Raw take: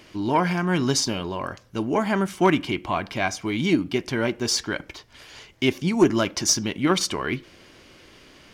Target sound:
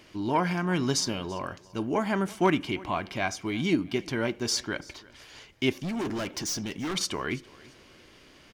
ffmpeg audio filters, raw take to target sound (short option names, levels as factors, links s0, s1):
-filter_complex "[0:a]asettb=1/sr,asplit=3[s0][s1][s2];[s0]atrim=end=5.754[s3];[s1]atrim=start=5.75:end=6.96,asetpts=PTS-STARTPTS,afade=t=in:d=0.004:c=qsin,afade=t=out:st=1.206:d=0.004:c=qsin,volume=16.8,asoftclip=hard,volume=0.0596[s4];[s2]atrim=start=6.956[s5];[s3][s4]acrossfade=d=0.004:c1=hsin:c2=qsin[s6];[s6][s5]acrossfade=d=0.004:c1=qsin:c2=hsin,aecho=1:1:337|674:0.075|0.0232,volume=0.596"